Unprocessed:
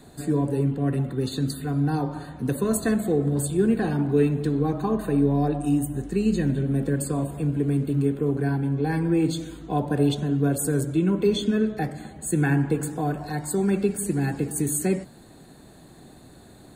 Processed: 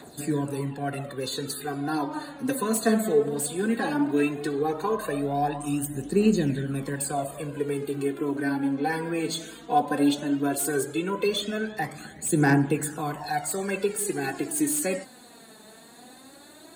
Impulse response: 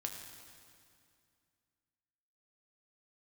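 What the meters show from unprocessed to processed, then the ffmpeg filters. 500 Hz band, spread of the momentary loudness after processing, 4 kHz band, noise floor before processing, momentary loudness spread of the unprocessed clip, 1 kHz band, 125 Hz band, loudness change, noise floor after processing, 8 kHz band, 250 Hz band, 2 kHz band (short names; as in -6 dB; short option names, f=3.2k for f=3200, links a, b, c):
-1.0 dB, 9 LU, +3.0 dB, -49 dBFS, 6 LU, +4.0 dB, -8.5 dB, -2.5 dB, -50 dBFS, +1.5 dB, -3.5 dB, +3.5 dB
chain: -filter_complex "[0:a]highpass=f=700:p=1,aphaser=in_gain=1:out_gain=1:delay=4.7:decay=0.62:speed=0.16:type=triangular,acrossover=split=1100[a][b];[b]asoftclip=type=tanh:threshold=-27.5dB[c];[a][c]amix=inputs=2:normalize=0,volume=3.5dB"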